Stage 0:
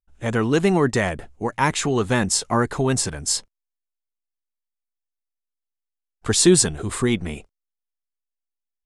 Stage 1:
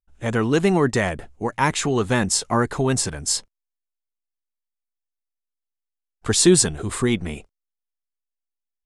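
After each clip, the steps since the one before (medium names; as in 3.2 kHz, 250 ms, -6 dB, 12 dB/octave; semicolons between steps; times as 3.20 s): no audible change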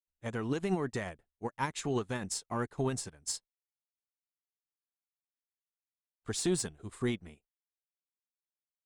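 single-diode clipper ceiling -5 dBFS; peak limiter -12.5 dBFS, peak gain reduction 8.5 dB; upward expansion 2.5:1, over -41 dBFS; trim -7 dB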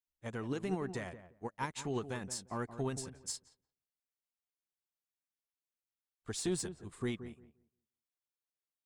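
filtered feedback delay 174 ms, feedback 19%, low-pass 1.2 kHz, level -11 dB; trim -4.5 dB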